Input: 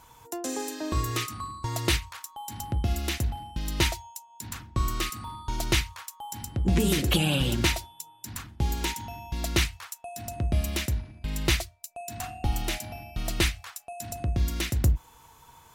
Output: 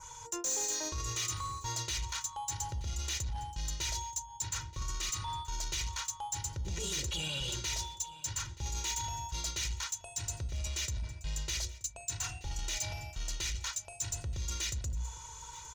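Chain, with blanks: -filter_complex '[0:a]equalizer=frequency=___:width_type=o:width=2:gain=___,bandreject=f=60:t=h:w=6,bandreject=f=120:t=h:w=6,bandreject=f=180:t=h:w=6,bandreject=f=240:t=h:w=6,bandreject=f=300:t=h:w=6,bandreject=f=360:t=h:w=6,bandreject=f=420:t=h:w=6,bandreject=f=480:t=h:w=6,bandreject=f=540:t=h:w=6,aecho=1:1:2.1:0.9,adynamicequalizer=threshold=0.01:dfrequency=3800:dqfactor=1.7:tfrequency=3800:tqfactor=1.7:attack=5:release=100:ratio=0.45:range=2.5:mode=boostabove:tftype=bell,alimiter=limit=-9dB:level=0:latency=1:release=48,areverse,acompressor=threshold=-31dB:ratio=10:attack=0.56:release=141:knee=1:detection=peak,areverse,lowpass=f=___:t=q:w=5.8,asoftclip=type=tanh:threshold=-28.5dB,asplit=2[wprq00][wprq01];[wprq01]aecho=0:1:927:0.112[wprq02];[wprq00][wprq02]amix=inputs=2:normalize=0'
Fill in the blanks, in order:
330, -5.5, 6500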